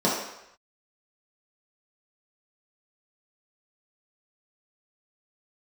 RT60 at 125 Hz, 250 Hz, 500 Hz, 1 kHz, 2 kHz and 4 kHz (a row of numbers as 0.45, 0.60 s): 0.60, 0.65, 0.80, 0.90, 0.90, 0.80 s